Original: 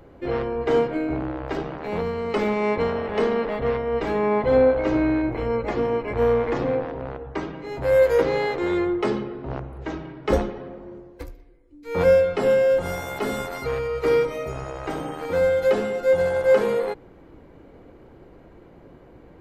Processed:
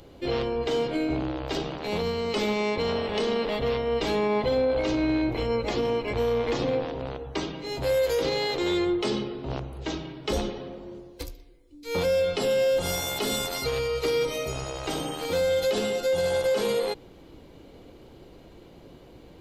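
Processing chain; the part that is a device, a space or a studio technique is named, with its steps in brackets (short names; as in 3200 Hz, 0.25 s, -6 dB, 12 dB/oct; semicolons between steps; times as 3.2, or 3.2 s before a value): over-bright horn tweeter (resonant high shelf 2500 Hz +11 dB, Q 1.5; limiter -16.5 dBFS, peak gain reduction 10 dB); gain -1 dB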